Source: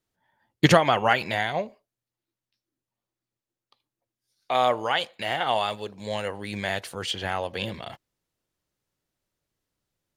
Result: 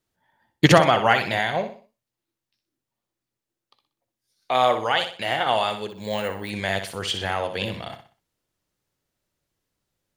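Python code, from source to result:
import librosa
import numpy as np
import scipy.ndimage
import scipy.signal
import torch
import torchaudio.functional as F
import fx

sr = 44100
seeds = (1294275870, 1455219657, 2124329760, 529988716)

y = fx.echo_feedback(x, sr, ms=62, feedback_pct=35, wet_db=-9)
y = fx.resample_bad(y, sr, factor=2, down='filtered', up='hold', at=(5.9, 6.5))
y = F.gain(torch.from_numpy(y), 2.5).numpy()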